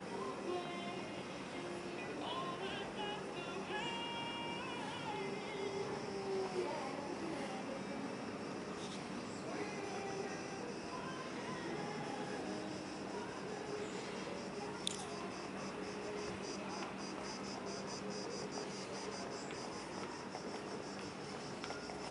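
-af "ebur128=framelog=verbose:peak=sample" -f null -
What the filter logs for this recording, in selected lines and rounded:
Integrated loudness:
  I:         -43.7 LUFS
  Threshold: -53.7 LUFS
Loudness range:
  LRA:         2.3 LU
  Threshold: -63.6 LUFS
  LRA low:   -44.5 LUFS
  LRA high:  -42.2 LUFS
Sample peak:
  Peak:      -17.3 dBFS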